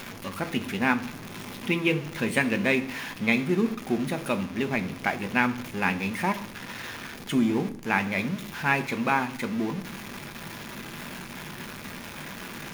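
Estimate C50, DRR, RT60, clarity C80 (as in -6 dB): 15.5 dB, 8.0 dB, 0.65 s, 18.5 dB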